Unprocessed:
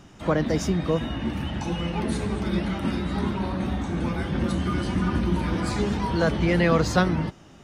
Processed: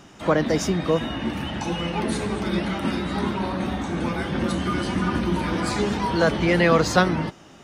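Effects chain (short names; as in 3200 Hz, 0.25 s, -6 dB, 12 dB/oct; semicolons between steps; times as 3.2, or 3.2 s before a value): low shelf 150 Hz -11 dB; gain +4.5 dB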